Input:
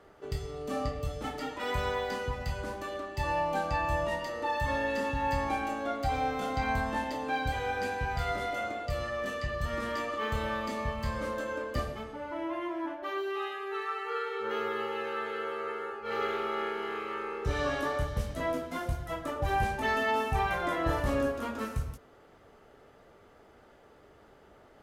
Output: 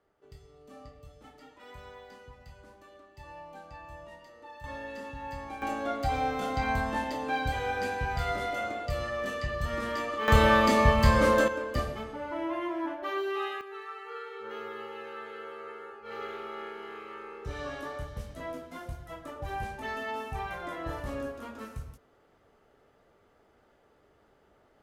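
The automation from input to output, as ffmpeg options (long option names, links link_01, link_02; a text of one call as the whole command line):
ffmpeg -i in.wav -af "asetnsamples=nb_out_samples=441:pad=0,asendcmd='4.64 volume volume -9.5dB;5.62 volume volume 1dB;10.28 volume volume 12dB;11.48 volume volume 2dB;13.61 volume volume -7dB',volume=-16.5dB" out.wav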